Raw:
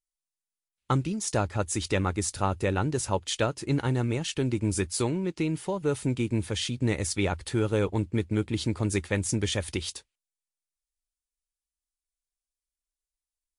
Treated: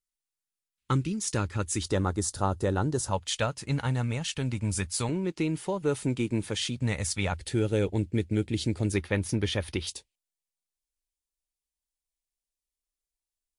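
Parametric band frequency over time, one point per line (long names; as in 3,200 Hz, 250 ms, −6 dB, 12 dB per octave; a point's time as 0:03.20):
parametric band −14 dB 0.57 octaves
690 Hz
from 0:01.83 2,400 Hz
from 0:03.11 350 Hz
from 0:05.09 74 Hz
from 0:06.76 350 Hz
from 0:07.34 1,100 Hz
from 0:08.92 7,600 Hz
from 0:09.87 1,400 Hz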